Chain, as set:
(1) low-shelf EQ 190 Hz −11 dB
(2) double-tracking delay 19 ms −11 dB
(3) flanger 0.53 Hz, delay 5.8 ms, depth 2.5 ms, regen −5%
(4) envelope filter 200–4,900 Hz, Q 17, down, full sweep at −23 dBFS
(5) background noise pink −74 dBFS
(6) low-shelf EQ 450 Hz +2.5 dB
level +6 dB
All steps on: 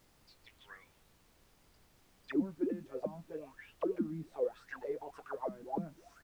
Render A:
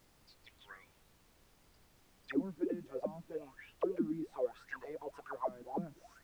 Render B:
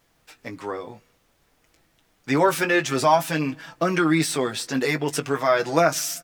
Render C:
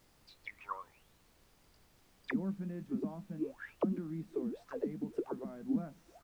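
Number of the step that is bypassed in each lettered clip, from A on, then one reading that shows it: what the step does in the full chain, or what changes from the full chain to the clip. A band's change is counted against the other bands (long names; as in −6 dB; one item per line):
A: 2, 2 kHz band +2.0 dB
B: 4, 2 kHz band +8.0 dB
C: 3, change in momentary loudness spread −4 LU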